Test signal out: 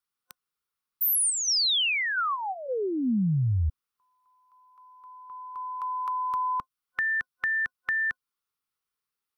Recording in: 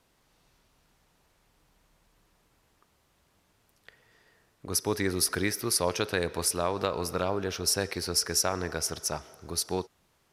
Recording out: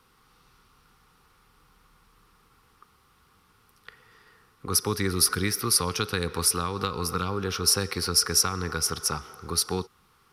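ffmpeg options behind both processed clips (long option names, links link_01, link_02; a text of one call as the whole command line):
ffmpeg -i in.wav -filter_complex "[0:a]superequalizer=6b=0.708:8b=0.251:10b=2.51:15b=0.562,acrossover=split=270|3000[link_01][link_02][link_03];[link_02]acompressor=threshold=-35dB:ratio=4[link_04];[link_01][link_04][link_03]amix=inputs=3:normalize=0,volume=5.5dB" out.wav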